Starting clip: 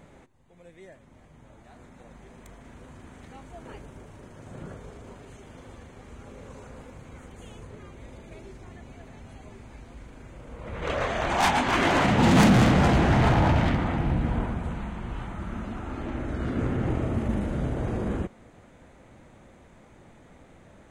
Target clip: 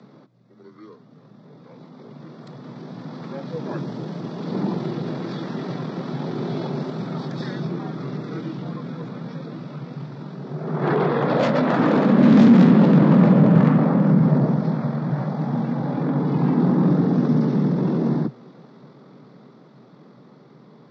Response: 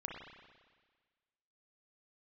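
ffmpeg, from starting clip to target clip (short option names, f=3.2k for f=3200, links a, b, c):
-filter_complex "[0:a]asetrate=23361,aresample=44100,atempo=1.88775,acrossover=split=230[a][b];[b]acompressor=threshold=-31dB:ratio=4[c];[a][c]amix=inputs=2:normalize=0,asplit=2[d][e];[e]alimiter=limit=-21dB:level=0:latency=1:release=53,volume=1dB[f];[d][f]amix=inputs=2:normalize=0,afreqshift=120,dynaudnorm=f=340:g=21:m=14dB,volume=-2dB" -ar 16000 -c:a aac -b:a 64k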